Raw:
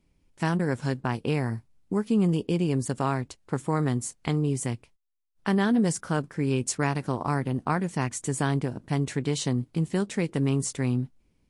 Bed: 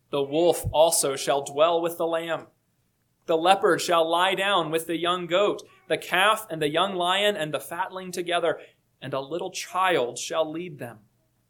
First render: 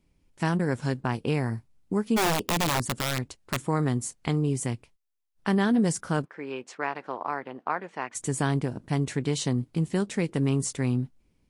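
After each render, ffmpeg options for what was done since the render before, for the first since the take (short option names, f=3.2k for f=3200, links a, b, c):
-filter_complex "[0:a]asplit=3[a][b][c];[a]afade=t=out:st=2.16:d=0.02[d];[b]aeval=exprs='(mod(9.44*val(0)+1,2)-1)/9.44':c=same,afade=t=in:st=2.16:d=0.02,afade=t=out:st=3.59:d=0.02[e];[c]afade=t=in:st=3.59:d=0.02[f];[d][e][f]amix=inputs=3:normalize=0,asplit=3[g][h][i];[g]afade=t=out:st=6.24:d=0.02[j];[h]highpass=520,lowpass=2.5k,afade=t=in:st=6.24:d=0.02,afade=t=out:st=8.14:d=0.02[k];[i]afade=t=in:st=8.14:d=0.02[l];[j][k][l]amix=inputs=3:normalize=0"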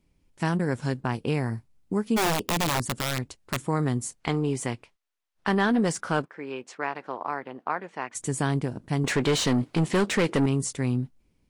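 -filter_complex "[0:a]asettb=1/sr,asplit=3[a][b][c];[a]atrim=end=4.204[d];[b]atrim=start=4.2:end=6.26,asetpts=PTS-STARTPTS,afade=t=in:d=0.004:c=qsin,afade=t=out:st=2.056:d=0.004:c=qsin,asplit=2[e][f];[f]highpass=f=720:p=1,volume=13dB,asoftclip=type=tanh:threshold=-11dB[g];[e][g]amix=inputs=2:normalize=0,lowpass=f=2.7k:p=1,volume=-6dB[h];[c]atrim=start=6.256[i];[d][h]acrossfade=d=0.004:c1=hsin:c2=qsin[j];[j][i]acrossfade=d=0.004:c1=qsin:c2=hsin,asettb=1/sr,asplit=3[k][l][m];[k]atrim=end=9.044[n];[l]atrim=start=9.04:end=10.46,asetpts=PTS-STARTPTS,afade=t=in:d=0.004:c=qsin,afade=t=out:st=1.416:d=0.004:c=qsin,asplit=2[o][p];[p]highpass=f=720:p=1,volume=24dB,asoftclip=type=tanh:threshold=-13.5dB[q];[o][q]amix=inputs=2:normalize=0,lowpass=f=2.8k:p=1,volume=-6dB[r];[m]atrim=start=10.456[s];[n][r]acrossfade=d=0.004:c1=hsin:c2=qsin[t];[t][s]acrossfade=d=0.004:c1=qsin:c2=hsin"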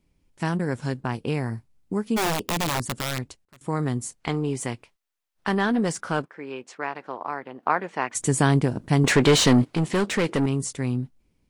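-filter_complex "[0:a]asettb=1/sr,asplit=3[a][b][c];[a]atrim=end=4.604[d];[b]atrim=start=4.6:end=5.58,asetpts=PTS-STARTPTS,afade=t=in:d=0.004:c=qsin,afade=t=out:st=0.976:d=0.004:c=qsin,highshelf=f=8.1k:g=4.5[e];[c]atrim=start=5.576[f];[d][e]acrossfade=d=0.004:c1=hsin:c2=qsin[g];[g][f]acrossfade=d=0.004:c1=qsin:c2=hsin,asplit=5[h][i][j][k][l];[h]atrim=end=3.45,asetpts=PTS-STARTPTS,afade=t=out:st=3.17:d=0.28:c=log:silence=0.0630957[m];[i]atrim=start=3.45:end=3.61,asetpts=PTS-STARTPTS,volume=-24dB[n];[j]atrim=start=3.61:end=7.632,asetpts=PTS-STARTPTS,afade=t=in:d=0.28:c=log:silence=0.0630957[o];[k]atrim=start=7.628:end=9.652,asetpts=PTS-STARTPTS,volume=6.5dB[p];[l]atrim=start=9.648[q];[m][n][o]concat=n=3:v=0:a=1[r];[r][p]acrossfade=d=0.004:c1=hsin:c2=hsin[s];[s][q]acrossfade=d=0.004:c1=hsin:c2=hsin"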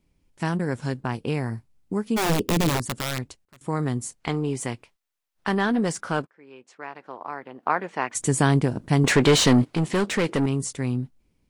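-filter_complex "[0:a]asettb=1/sr,asplit=3[a][b][c];[a]atrim=end=2.294[d];[b]atrim=start=2.29:end=2.77,asetpts=PTS-STARTPTS,afade=t=in:d=0.004:c=qsin,afade=t=out:st=0.476:d=0.004:c=qsin,lowshelf=f=560:t=q:w=1.5:g=6.5[e];[c]atrim=start=2.766[f];[d][e]acrossfade=d=0.004:c1=hsin:c2=qsin[g];[g][f]acrossfade=d=0.004:c1=qsin:c2=hsin,asplit=2[h][i];[h]atrim=end=6.27,asetpts=PTS-STARTPTS,afade=t=out:st=6.266:d=0.004:c=hsin:silence=0.125893[j];[i]atrim=start=6.27,asetpts=PTS-STARTPTS,afade=t=in:d=1.59:silence=0.125893[k];[j][k]concat=n=2:v=0:a=1"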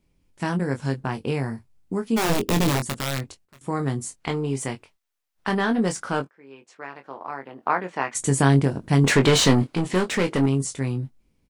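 -filter_complex "[0:a]asplit=2[a][b];[b]adelay=22,volume=-7dB[c];[a][c]amix=inputs=2:normalize=0"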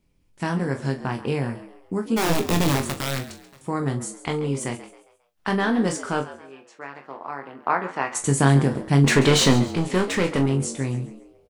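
-filter_complex "[0:a]asplit=2[a][b];[b]adelay=42,volume=-11.5dB[c];[a][c]amix=inputs=2:normalize=0,asplit=5[d][e][f][g][h];[e]adelay=135,afreqshift=90,volume=-15dB[i];[f]adelay=270,afreqshift=180,volume=-23.2dB[j];[g]adelay=405,afreqshift=270,volume=-31.4dB[k];[h]adelay=540,afreqshift=360,volume=-39.5dB[l];[d][i][j][k][l]amix=inputs=5:normalize=0"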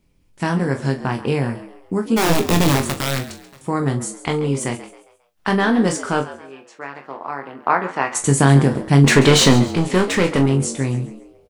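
-af "volume=5dB,alimiter=limit=-1dB:level=0:latency=1"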